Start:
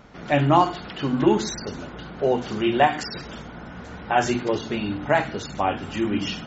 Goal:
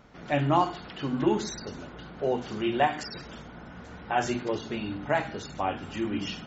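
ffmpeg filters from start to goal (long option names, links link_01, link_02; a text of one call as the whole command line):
ffmpeg -i in.wav -af "bandreject=frequency=201.2:width_type=h:width=4,bandreject=frequency=402.4:width_type=h:width=4,bandreject=frequency=603.6:width_type=h:width=4,bandreject=frequency=804.8:width_type=h:width=4,bandreject=frequency=1006:width_type=h:width=4,bandreject=frequency=1207.2:width_type=h:width=4,bandreject=frequency=1408.4:width_type=h:width=4,bandreject=frequency=1609.6:width_type=h:width=4,bandreject=frequency=1810.8:width_type=h:width=4,bandreject=frequency=2012:width_type=h:width=4,bandreject=frequency=2213.2:width_type=h:width=4,bandreject=frequency=2414.4:width_type=h:width=4,bandreject=frequency=2615.6:width_type=h:width=4,bandreject=frequency=2816.8:width_type=h:width=4,bandreject=frequency=3018:width_type=h:width=4,bandreject=frequency=3219.2:width_type=h:width=4,bandreject=frequency=3420.4:width_type=h:width=4,bandreject=frequency=3621.6:width_type=h:width=4,bandreject=frequency=3822.8:width_type=h:width=4,bandreject=frequency=4024:width_type=h:width=4,bandreject=frequency=4225.2:width_type=h:width=4,bandreject=frequency=4426.4:width_type=h:width=4,volume=-6dB" out.wav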